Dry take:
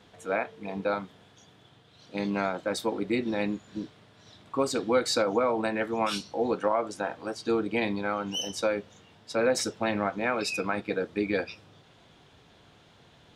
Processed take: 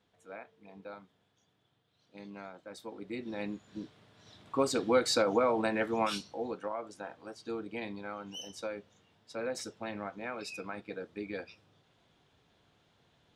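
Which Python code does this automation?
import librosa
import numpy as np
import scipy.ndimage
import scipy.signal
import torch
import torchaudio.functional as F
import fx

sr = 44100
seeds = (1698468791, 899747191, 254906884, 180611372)

y = fx.gain(x, sr, db=fx.line((2.68, -17.5), (3.44, -8.5), (4.61, -2.0), (5.98, -2.0), (6.58, -11.5)))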